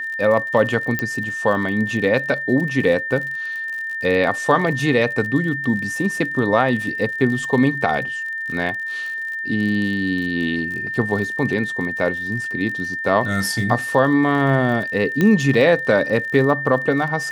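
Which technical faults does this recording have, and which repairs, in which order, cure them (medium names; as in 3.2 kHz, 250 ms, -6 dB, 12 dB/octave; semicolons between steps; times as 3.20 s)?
crackle 48 per s -28 dBFS
whine 1.8 kHz -24 dBFS
0.99 s: pop -8 dBFS
15.21 s: pop -7 dBFS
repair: de-click; band-stop 1.8 kHz, Q 30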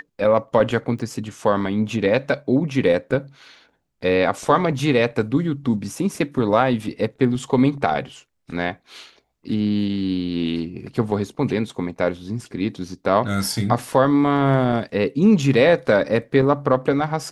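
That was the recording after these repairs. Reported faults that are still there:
0.99 s: pop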